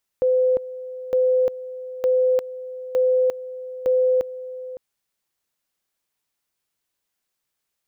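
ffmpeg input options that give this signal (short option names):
-f lavfi -i "aevalsrc='pow(10,(-15-15.5*gte(mod(t,0.91),0.35))/20)*sin(2*PI*510*t)':d=4.55:s=44100"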